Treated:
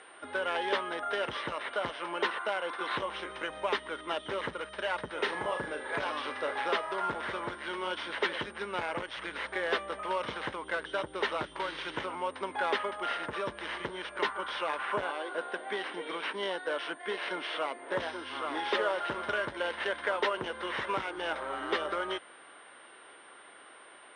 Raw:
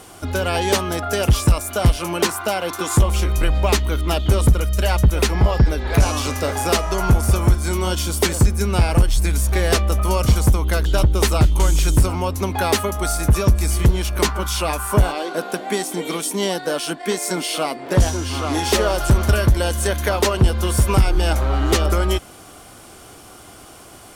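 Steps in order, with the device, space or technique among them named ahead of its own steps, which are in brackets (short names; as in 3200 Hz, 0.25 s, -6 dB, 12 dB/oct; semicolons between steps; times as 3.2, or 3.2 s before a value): toy sound module (decimation joined by straight lines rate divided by 4×; pulse-width modulation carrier 9000 Hz; speaker cabinet 670–4600 Hz, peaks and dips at 730 Hz -9 dB, 1200 Hz -4 dB, 2500 Hz -8 dB, 4500 Hz -9 dB); 5.14–5.98 flutter echo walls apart 6.8 m, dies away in 0.31 s; gain -3.5 dB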